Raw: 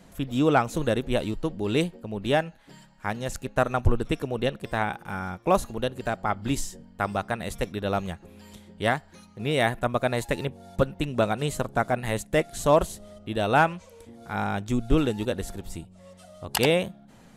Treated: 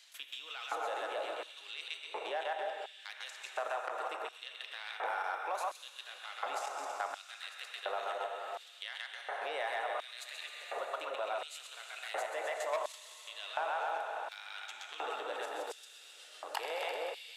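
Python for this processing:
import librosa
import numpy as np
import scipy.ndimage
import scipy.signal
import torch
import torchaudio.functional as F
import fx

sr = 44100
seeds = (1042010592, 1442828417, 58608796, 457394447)

p1 = x + fx.echo_split(x, sr, split_hz=650.0, low_ms=303, high_ms=129, feedback_pct=52, wet_db=-6.0, dry=0)
p2 = fx.level_steps(p1, sr, step_db=16)
p3 = fx.high_shelf(p2, sr, hz=7000.0, db=-11.5)
p4 = fx.rev_plate(p3, sr, seeds[0], rt60_s=3.9, hf_ratio=0.8, predelay_ms=0, drr_db=4.0)
p5 = 10.0 ** (-22.0 / 20.0) * np.tanh(p4 / 10.0 ** (-22.0 / 20.0))
p6 = fx.filter_lfo_highpass(p5, sr, shape='square', hz=0.7, low_hz=770.0, high_hz=3600.0, q=1.5)
p7 = scipy.signal.sosfilt(scipy.signal.butter(4, 370.0, 'highpass', fs=sr, output='sos'), p6)
p8 = fx.band_squash(p7, sr, depth_pct=70)
y = p8 * librosa.db_to_amplitude(-2.5)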